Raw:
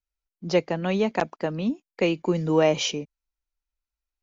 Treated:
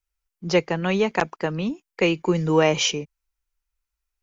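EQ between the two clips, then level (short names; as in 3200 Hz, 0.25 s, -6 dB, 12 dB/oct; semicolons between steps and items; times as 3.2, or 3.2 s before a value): fifteen-band EQ 100 Hz -5 dB, 250 Hz -9 dB, 630 Hz -7 dB, 4000 Hz -4 dB; +6.5 dB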